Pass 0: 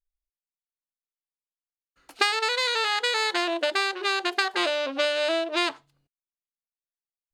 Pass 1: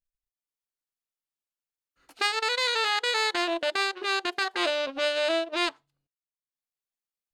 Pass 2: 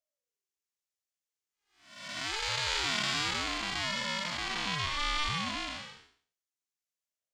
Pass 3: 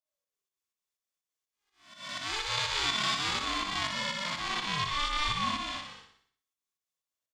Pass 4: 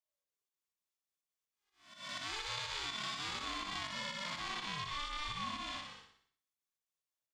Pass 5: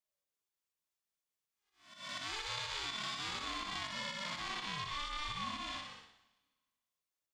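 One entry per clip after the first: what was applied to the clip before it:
transient shaper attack -7 dB, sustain -11 dB
spectral blur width 430 ms; fifteen-band graphic EQ 250 Hz -10 dB, 2.5 kHz +5 dB, 6.3 kHz +10 dB; ring modulator with a swept carrier 500 Hz, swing 25%, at 0.98 Hz
volume shaper 124 bpm, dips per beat 2, -13 dB, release 154 ms; small resonant body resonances 1.1/3.5 kHz, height 10 dB; on a send: feedback delay 61 ms, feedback 47%, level -6 dB
compression, threshold -32 dBFS, peak gain reduction 8 dB; trim -4.5 dB
plate-style reverb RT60 1.5 s, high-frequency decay 1×, DRR 16 dB

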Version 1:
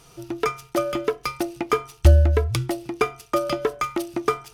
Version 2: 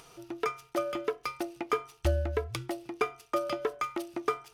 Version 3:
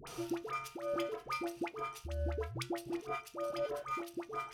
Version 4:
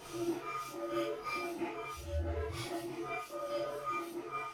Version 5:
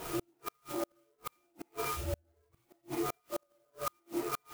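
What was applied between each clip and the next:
tone controls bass -9 dB, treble -4 dB; upward compressor, threshold -41 dBFS; trim -7 dB
random-step tremolo, depth 80%; compressor with a negative ratio -42 dBFS, ratio -1; phase dispersion highs, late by 73 ms, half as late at 890 Hz; trim +4 dB
phase randomisation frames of 200 ms; trim +1 dB
inverted gate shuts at -31 dBFS, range -42 dB; sampling jitter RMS 0.065 ms; trim +7.5 dB

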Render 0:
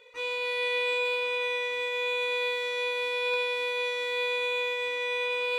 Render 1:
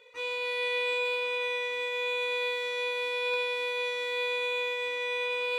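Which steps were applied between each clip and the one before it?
high-pass 62 Hz; trim -1.5 dB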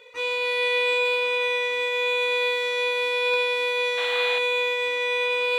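painted sound noise, 3.97–4.39 s, 640–4200 Hz -40 dBFS; trim +7 dB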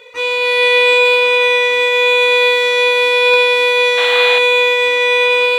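level rider gain up to 3 dB; trim +9 dB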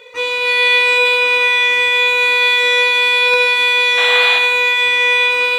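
reverberation RT60 0.60 s, pre-delay 52 ms, DRR 6.5 dB

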